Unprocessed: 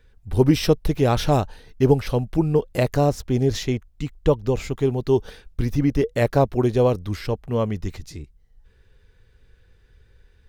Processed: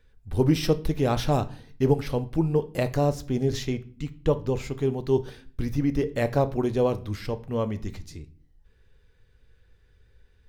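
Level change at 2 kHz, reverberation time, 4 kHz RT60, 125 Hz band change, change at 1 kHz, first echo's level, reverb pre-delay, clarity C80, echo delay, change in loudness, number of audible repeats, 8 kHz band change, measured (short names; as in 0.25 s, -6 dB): -4.5 dB, 0.45 s, 0.35 s, -4.5 dB, -4.5 dB, none, 4 ms, 22.5 dB, none, -4.5 dB, none, -5.0 dB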